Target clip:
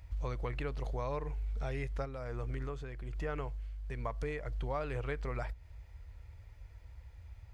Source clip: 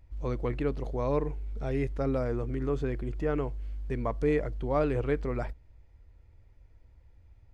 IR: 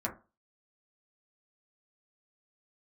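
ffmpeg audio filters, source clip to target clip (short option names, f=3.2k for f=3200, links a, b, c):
-filter_complex "[0:a]highpass=46,equalizer=f=280:t=o:w=1.9:g=-13.5,acompressor=threshold=-44dB:ratio=6,asplit=3[a][b][c];[a]afade=t=out:st=2.04:d=0.02[d];[b]tremolo=f=1.2:d=0.53,afade=t=in:st=2.04:d=0.02,afade=t=out:st=4.45:d=0.02[e];[c]afade=t=in:st=4.45:d=0.02[f];[d][e][f]amix=inputs=3:normalize=0,volume=10dB"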